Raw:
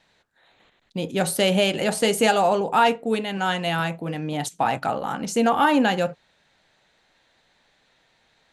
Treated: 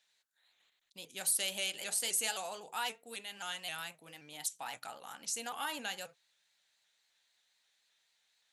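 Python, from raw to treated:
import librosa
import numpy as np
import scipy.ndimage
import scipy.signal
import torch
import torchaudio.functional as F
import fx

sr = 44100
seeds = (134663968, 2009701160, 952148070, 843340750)

y = F.preemphasis(torch.from_numpy(x), 0.97).numpy()
y = fx.vibrato_shape(y, sr, shape='saw_up', rate_hz=3.8, depth_cents=100.0)
y = y * librosa.db_to_amplitude(-3.5)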